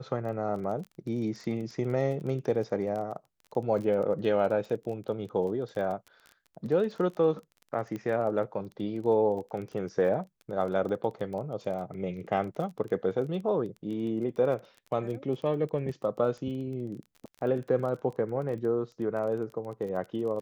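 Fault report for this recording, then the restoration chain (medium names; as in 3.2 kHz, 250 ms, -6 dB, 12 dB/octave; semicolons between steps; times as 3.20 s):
crackle 22 per s -37 dBFS
7.96 s: pop -25 dBFS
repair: de-click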